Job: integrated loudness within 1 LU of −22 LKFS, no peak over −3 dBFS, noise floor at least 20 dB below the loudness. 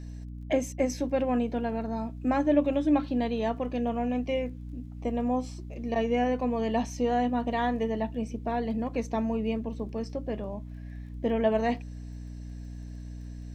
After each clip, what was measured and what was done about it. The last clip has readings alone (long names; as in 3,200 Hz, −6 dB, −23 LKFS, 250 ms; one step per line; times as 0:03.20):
crackle rate 21 per second; mains hum 60 Hz; hum harmonics up to 300 Hz; level of the hum −37 dBFS; integrated loudness −29.5 LKFS; sample peak −12.0 dBFS; target loudness −22.0 LKFS
→ click removal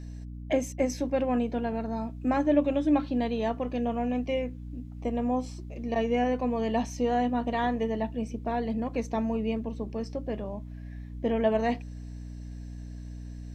crackle rate 0.074 per second; mains hum 60 Hz; hum harmonics up to 300 Hz; level of the hum −37 dBFS
→ hum removal 60 Hz, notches 5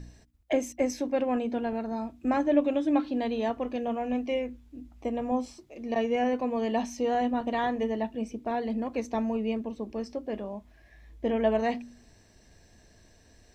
mains hum none found; integrated loudness −30.0 LKFS; sample peak −12.5 dBFS; target loudness −22.0 LKFS
→ level +8 dB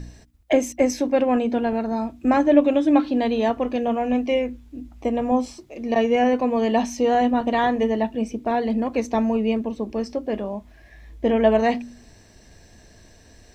integrated loudness −22.0 LKFS; sample peak −4.5 dBFS; background noise floor −51 dBFS